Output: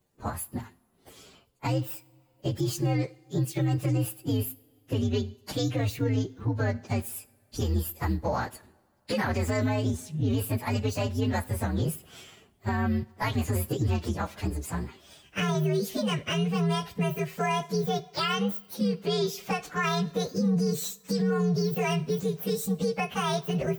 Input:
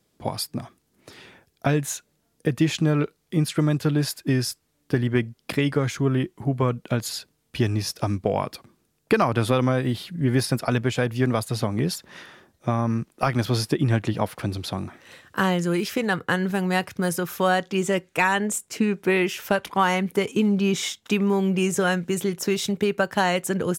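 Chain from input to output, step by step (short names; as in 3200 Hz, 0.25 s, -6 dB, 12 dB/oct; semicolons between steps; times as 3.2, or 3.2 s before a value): inharmonic rescaling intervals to 128%; two-slope reverb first 0.54 s, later 3.1 s, from -21 dB, DRR 18 dB; limiter -18.5 dBFS, peak gain reduction 9 dB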